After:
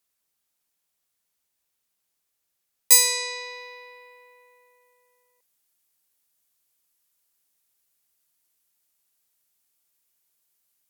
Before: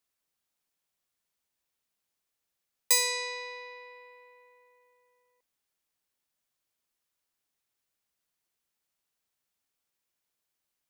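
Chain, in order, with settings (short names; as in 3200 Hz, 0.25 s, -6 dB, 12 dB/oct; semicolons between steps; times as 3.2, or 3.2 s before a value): bell 14000 Hz +6 dB 1.7 oct, from 2.92 s +12.5 dB; gain +2 dB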